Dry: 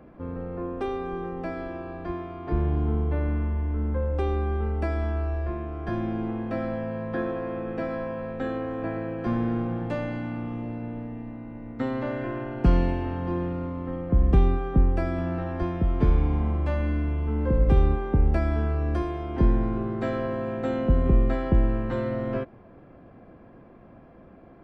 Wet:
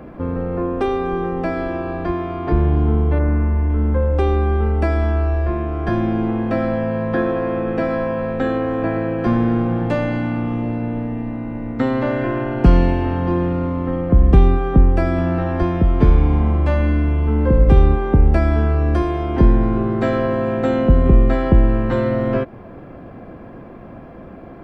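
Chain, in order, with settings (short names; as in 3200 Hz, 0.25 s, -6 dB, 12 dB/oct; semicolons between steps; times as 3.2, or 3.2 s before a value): 3.18–3.68 LPF 2000 Hz -> 2900 Hz 24 dB/oct; in parallel at -0.5 dB: compressor, threshold -34 dBFS, peak gain reduction 19 dB; on the sum: gain +7 dB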